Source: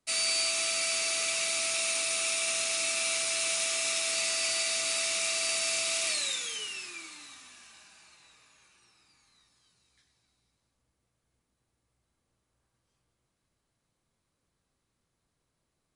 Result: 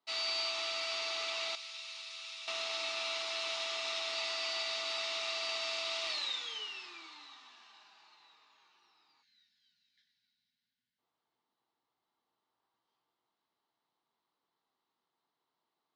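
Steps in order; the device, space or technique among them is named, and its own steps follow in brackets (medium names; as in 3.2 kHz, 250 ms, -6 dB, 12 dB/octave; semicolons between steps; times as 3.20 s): 9.22–10.99 s: time-frequency box 270–1400 Hz -26 dB; phone earpiece (cabinet simulation 440–4200 Hz, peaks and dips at 550 Hz -10 dB, 890 Hz +6 dB, 1.6 kHz -6 dB, 2.4 kHz -9 dB); 1.55–2.48 s: amplifier tone stack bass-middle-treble 5-5-5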